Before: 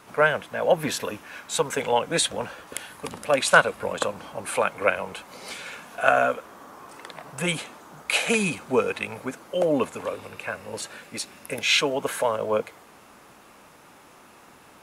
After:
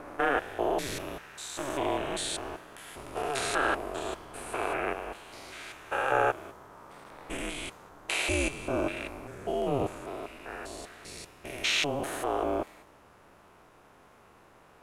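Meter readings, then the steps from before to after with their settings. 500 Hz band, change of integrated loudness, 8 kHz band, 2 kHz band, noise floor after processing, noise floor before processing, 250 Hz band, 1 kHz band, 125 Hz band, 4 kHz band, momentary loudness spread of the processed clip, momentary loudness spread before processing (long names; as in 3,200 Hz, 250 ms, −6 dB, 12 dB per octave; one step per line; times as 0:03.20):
−7.5 dB, −7.0 dB, −7.5 dB, −8.0 dB, −58 dBFS, −52 dBFS, −4.5 dB, −5.0 dB, −5.0 dB, −6.5 dB, 16 LU, 17 LU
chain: spectrum averaged block by block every 200 ms
ring modulation 140 Hz
one half of a high-frequency compander decoder only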